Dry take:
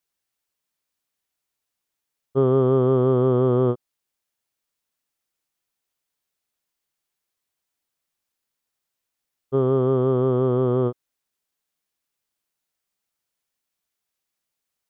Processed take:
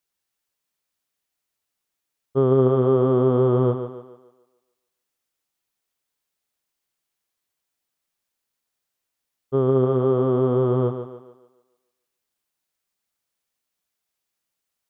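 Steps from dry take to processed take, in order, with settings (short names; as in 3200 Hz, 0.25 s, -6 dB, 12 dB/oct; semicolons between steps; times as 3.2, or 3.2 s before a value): thinning echo 0.145 s, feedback 44%, high-pass 170 Hz, level -8 dB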